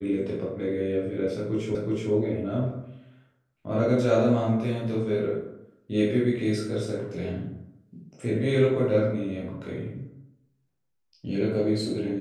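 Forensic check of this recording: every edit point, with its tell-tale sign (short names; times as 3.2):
1.75 repeat of the last 0.37 s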